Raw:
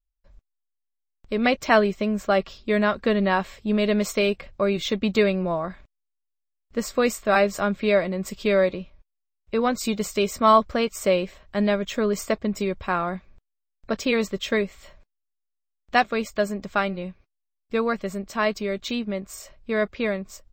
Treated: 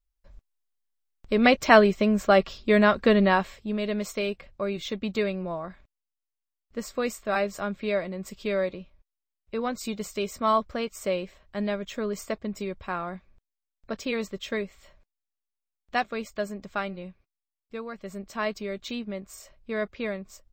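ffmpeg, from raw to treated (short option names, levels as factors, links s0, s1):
-af "volume=3.16,afade=t=out:st=3.18:d=0.54:silence=0.354813,afade=t=out:st=17.06:d=0.85:silence=0.446684,afade=t=in:st=17.91:d=0.3:silence=0.398107"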